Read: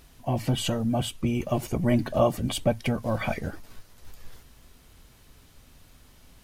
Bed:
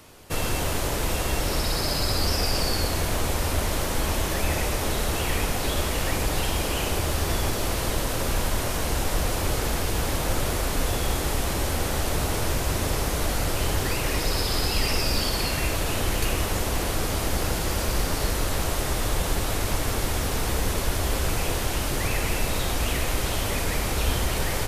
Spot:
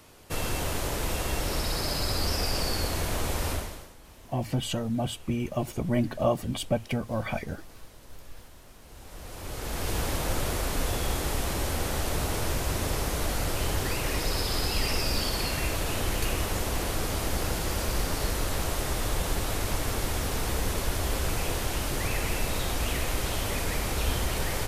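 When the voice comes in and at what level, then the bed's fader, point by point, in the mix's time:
4.05 s, −3.0 dB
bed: 0:03.52 −4 dB
0:03.97 −26.5 dB
0:08.81 −26.5 dB
0:09.90 −3.5 dB

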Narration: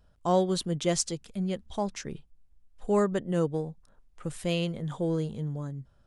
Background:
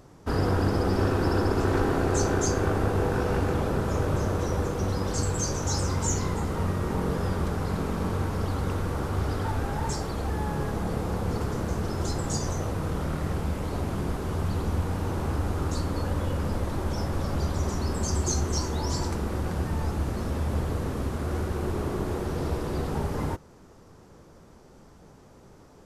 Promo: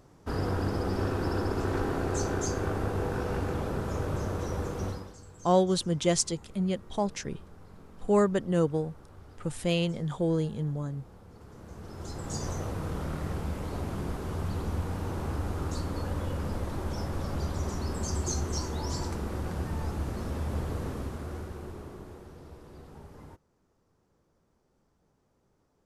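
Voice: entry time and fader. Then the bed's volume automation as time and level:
5.20 s, +1.5 dB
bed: 0:04.88 −5.5 dB
0:05.19 −23.5 dB
0:11.30 −23.5 dB
0:12.45 −4.5 dB
0:20.88 −4.5 dB
0:22.43 −19.5 dB

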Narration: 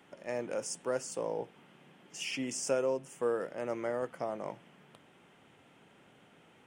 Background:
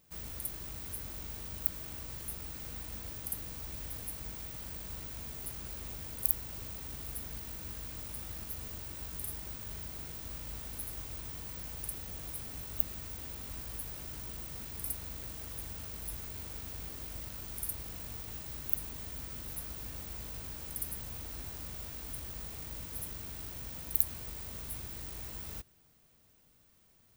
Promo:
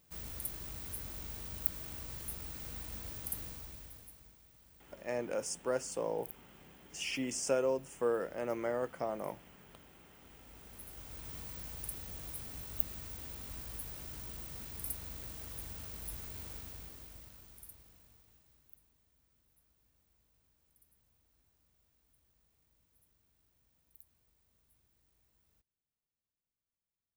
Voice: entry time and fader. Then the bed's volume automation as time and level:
4.80 s, −0.5 dB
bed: 0:03.44 −1.5 dB
0:04.40 −19.5 dB
0:10.13 −19.5 dB
0:11.35 −2.5 dB
0:16.51 −2.5 dB
0:19.06 −31 dB

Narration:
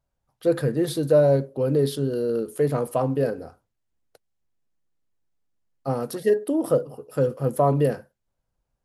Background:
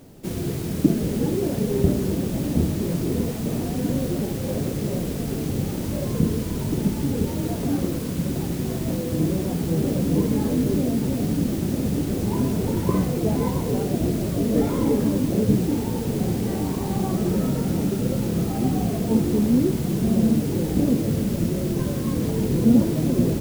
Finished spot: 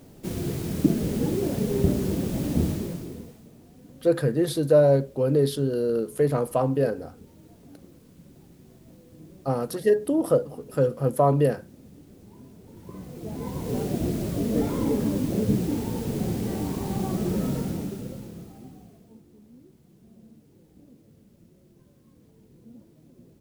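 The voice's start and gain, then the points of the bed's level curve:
3.60 s, 0.0 dB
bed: 0:02.71 −2.5 dB
0:03.52 −25.5 dB
0:12.64 −25.5 dB
0:13.78 −4 dB
0:17.57 −4 dB
0:19.24 −33 dB

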